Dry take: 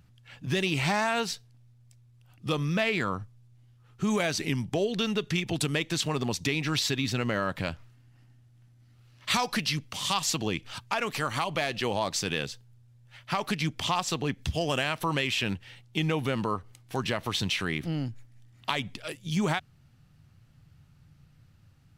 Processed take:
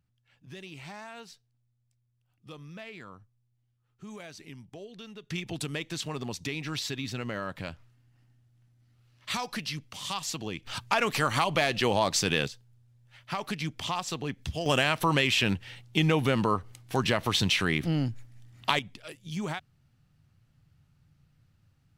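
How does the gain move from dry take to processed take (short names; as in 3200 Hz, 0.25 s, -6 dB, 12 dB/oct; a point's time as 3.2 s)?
-17 dB
from 5.3 s -6 dB
from 10.67 s +3.5 dB
from 12.48 s -4 dB
from 14.66 s +3.5 dB
from 18.79 s -6.5 dB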